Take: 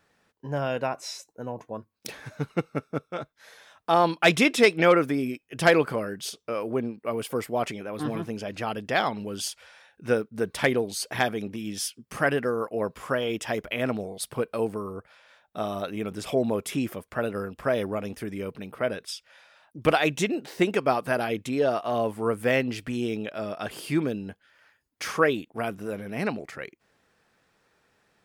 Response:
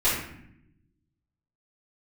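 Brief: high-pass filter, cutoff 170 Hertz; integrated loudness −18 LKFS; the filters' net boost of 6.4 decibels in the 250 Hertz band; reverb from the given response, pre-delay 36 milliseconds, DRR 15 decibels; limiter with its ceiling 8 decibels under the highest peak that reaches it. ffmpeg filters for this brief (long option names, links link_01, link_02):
-filter_complex "[0:a]highpass=170,equalizer=frequency=250:width_type=o:gain=9,alimiter=limit=-12.5dB:level=0:latency=1,asplit=2[link_01][link_02];[1:a]atrim=start_sample=2205,adelay=36[link_03];[link_02][link_03]afir=irnorm=-1:irlink=0,volume=-29dB[link_04];[link_01][link_04]amix=inputs=2:normalize=0,volume=8.5dB"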